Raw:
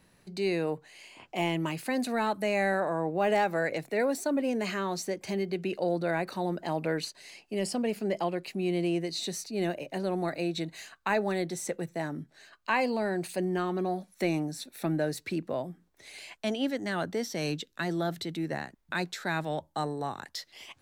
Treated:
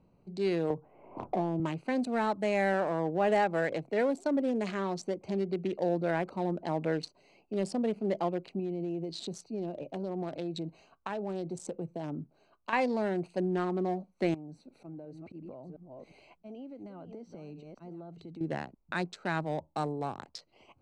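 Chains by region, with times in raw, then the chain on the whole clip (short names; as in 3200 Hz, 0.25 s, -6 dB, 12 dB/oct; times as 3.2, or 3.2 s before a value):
0.7–1.6 LPF 1400 Hz 24 dB/oct + three-band squash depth 100%
8.59–12.73 notch 2000 Hz, Q 9.9 + compressor 5:1, threshold -30 dBFS
14.34–18.41 reverse delay 0.356 s, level -12.5 dB + auto swell 0.145 s + compressor 10:1, threshold -40 dBFS
whole clip: Wiener smoothing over 25 samples; LPF 9000 Hz 24 dB/oct; dynamic EQ 3800 Hz, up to -3 dB, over -45 dBFS, Q 0.73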